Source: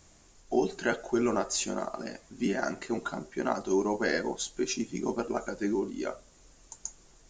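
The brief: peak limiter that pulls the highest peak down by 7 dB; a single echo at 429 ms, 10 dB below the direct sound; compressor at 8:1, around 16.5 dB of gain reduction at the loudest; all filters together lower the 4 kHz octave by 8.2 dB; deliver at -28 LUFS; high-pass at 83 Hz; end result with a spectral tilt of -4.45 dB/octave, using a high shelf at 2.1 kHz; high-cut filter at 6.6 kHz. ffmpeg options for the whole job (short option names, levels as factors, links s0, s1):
-af "highpass=83,lowpass=6600,highshelf=f=2100:g=-4.5,equalizer=f=4000:t=o:g=-5,acompressor=threshold=0.01:ratio=8,alimiter=level_in=3.16:limit=0.0631:level=0:latency=1,volume=0.316,aecho=1:1:429:0.316,volume=7.94"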